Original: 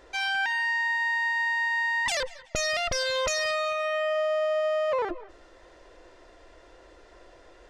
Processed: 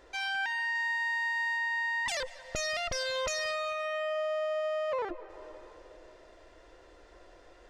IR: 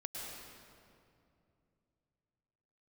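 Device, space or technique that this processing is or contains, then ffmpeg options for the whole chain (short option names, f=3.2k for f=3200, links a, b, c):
ducked reverb: -filter_complex "[0:a]asettb=1/sr,asplit=3[a][b][c];[a]atrim=end=0.754[d];[b]atrim=start=0.75:end=1.57,asetpts=PTS-STARTPTS,afade=t=in:d=0.004:c=qsin,afade=t=out:st=0.816:d=0.004:c=qsin,highshelf=f=5.7k:g=5[e];[c]atrim=start=1.566[f];[d][e]acrossfade=d=0.004:c1=hsin:c2=qsin[g];[g][f]acrossfade=d=0.004:c1=qsin:c2=hsin,asplit=3[h][i][j];[1:a]atrim=start_sample=2205[k];[i][k]afir=irnorm=-1:irlink=0[l];[j]apad=whole_len=339350[m];[l][m]sidechaincompress=threshold=-41dB:ratio=8:attack=33:release=351,volume=-6dB[n];[h][n]amix=inputs=2:normalize=0,volume=-6dB"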